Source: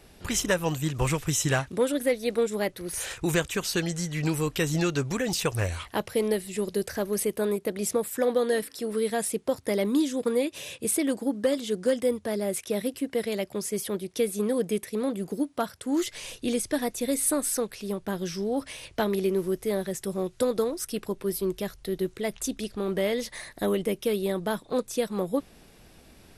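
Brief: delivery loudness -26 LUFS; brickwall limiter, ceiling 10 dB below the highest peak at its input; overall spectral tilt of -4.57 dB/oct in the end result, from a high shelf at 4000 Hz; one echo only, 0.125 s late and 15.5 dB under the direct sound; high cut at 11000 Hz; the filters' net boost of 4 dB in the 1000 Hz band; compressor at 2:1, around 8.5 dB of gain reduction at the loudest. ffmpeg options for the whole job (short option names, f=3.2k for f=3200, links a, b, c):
-af "lowpass=11k,equalizer=f=1k:t=o:g=5.5,highshelf=f=4k:g=-4.5,acompressor=threshold=-35dB:ratio=2,alimiter=level_in=4.5dB:limit=-24dB:level=0:latency=1,volume=-4.5dB,aecho=1:1:125:0.168,volume=12dB"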